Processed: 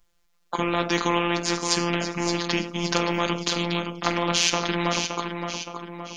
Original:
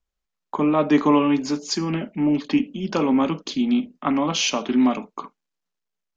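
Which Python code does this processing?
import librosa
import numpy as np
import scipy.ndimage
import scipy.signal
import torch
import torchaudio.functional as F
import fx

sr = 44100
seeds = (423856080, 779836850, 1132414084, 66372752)

y = fx.robotise(x, sr, hz=172.0)
y = fx.echo_feedback(y, sr, ms=569, feedback_pct=31, wet_db=-13.0)
y = fx.spectral_comp(y, sr, ratio=2.0)
y = y * librosa.db_to_amplitude(4.0)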